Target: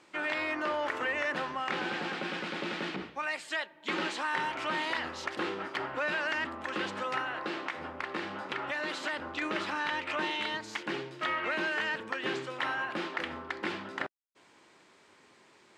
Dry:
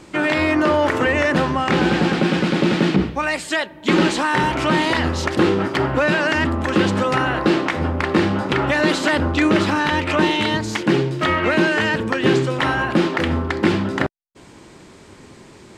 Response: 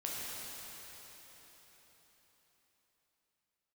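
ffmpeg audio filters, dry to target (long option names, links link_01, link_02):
-filter_complex "[0:a]highpass=frequency=1400:poles=1,highshelf=frequency=4600:gain=-12,asettb=1/sr,asplit=3[link_01][link_02][link_03];[link_01]atrim=end=7.194[link_04];[link_02]atrim=start=7.19:end=9.42,asetpts=PTS-STARTPTS,afade=type=in:duration=0.004:curve=qsin,afade=type=out:start_time=2.226:duration=0.004:curve=qsin,acompressor=threshold=-25dB:ratio=2[link_05];[link_03]atrim=start=9.416[link_06];[link_04][link_05]acrossfade=duration=0.004:curve1=hsin:curve2=qsin[link_07];[link_07][link_06]acrossfade=duration=0.004:curve1=qsin:curve2=hsin,volume=-7.5dB"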